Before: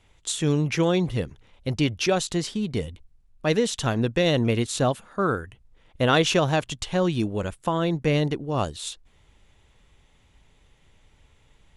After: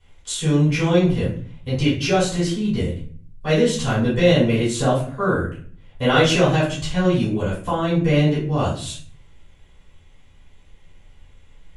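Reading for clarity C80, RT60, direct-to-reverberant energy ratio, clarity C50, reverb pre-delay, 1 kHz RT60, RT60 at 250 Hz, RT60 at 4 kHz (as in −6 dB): 10.0 dB, 0.50 s, −11.5 dB, 4.0 dB, 3 ms, 0.45 s, 0.70 s, 0.35 s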